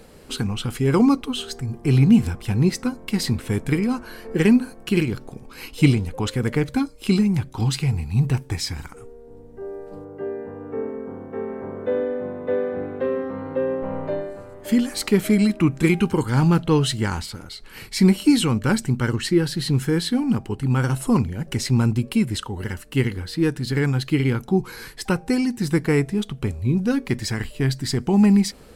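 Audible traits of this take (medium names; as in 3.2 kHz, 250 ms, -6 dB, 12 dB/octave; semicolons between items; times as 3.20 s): noise floor -44 dBFS; spectral tilt -6.5 dB/octave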